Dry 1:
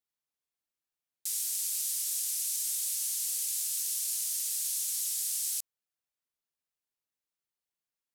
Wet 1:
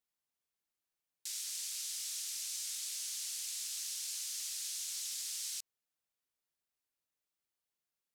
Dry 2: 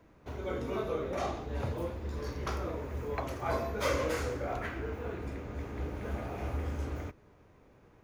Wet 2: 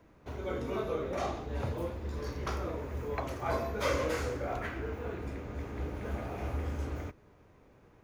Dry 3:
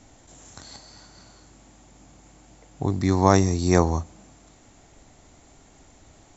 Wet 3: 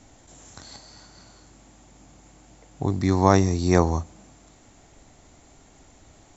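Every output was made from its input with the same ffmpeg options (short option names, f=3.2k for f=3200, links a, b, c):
-filter_complex "[0:a]acrossover=split=6500[a][b];[b]acompressor=threshold=-48dB:ratio=4:attack=1:release=60[c];[a][c]amix=inputs=2:normalize=0"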